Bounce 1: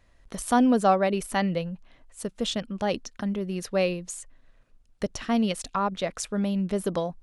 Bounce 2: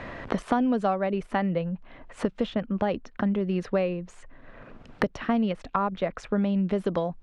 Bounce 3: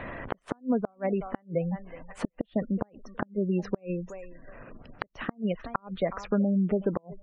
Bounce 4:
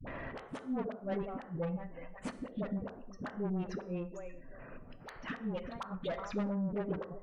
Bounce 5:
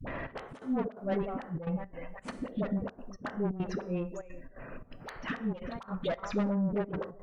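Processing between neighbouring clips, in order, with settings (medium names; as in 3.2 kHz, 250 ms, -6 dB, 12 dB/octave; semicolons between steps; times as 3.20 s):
low-pass 2.2 kHz 12 dB/octave; three bands compressed up and down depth 100%
thinning echo 369 ms, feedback 31%, high-pass 470 Hz, level -14.5 dB; spectral gate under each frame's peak -25 dB strong; inverted gate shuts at -15 dBFS, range -36 dB
gated-style reverb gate 230 ms falling, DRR 10.5 dB; saturation -27 dBFS, distortion -9 dB; phase dispersion highs, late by 72 ms, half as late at 420 Hz; trim -4 dB
trance gate "xxx.xx.xxx.xxxx" 171 bpm -12 dB; trim +5 dB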